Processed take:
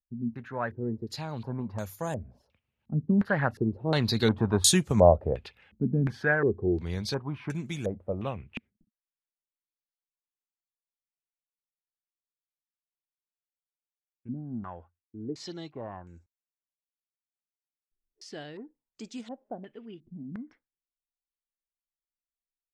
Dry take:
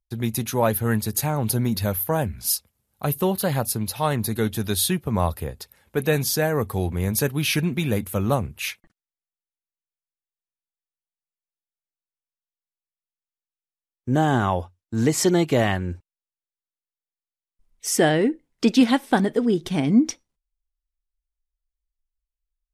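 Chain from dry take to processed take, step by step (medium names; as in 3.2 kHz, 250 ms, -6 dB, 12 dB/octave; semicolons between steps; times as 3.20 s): Doppler pass-by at 4.66 s, 14 m/s, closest 12 m; step-sequenced low-pass 2.8 Hz 230–7100 Hz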